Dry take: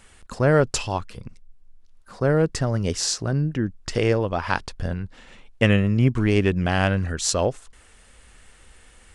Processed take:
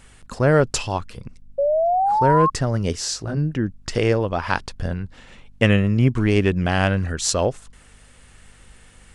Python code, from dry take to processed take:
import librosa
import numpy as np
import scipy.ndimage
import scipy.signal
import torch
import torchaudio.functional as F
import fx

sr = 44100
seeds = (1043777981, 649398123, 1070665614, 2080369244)

y = fx.spec_paint(x, sr, seeds[0], shape='rise', start_s=1.58, length_s=0.92, low_hz=550.0, high_hz=1100.0, level_db=-20.0)
y = fx.add_hum(y, sr, base_hz=50, snr_db=32)
y = fx.detune_double(y, sr, cents=fx.line((2.93, 32.0), (3.36, 17.0)), at=(2.93, 3.36), fade=0.02)
y = y * 10.0 ** (1.5 / 20.0)